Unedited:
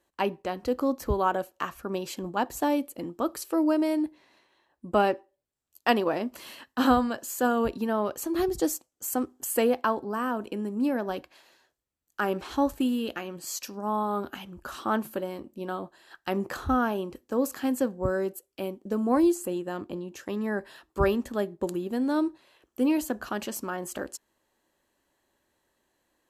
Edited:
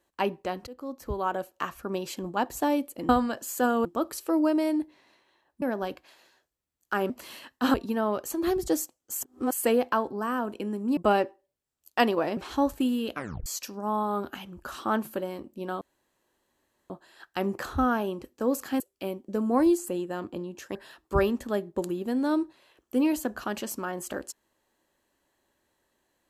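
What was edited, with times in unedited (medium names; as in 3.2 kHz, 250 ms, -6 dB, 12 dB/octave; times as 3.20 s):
0.67–1.64 s: fade in, from -19.5 dB
4.86–6.26 s: swap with 10.89–12.37 s
6.90–7.66 s: move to 3.09 s
9.12–9.46 s: reverse
13.13 s: tape stop 0.33 s
15.81 s: insert room tone 1.09 s
17.71–18.37 s: delete
20.32–20.60 s: delete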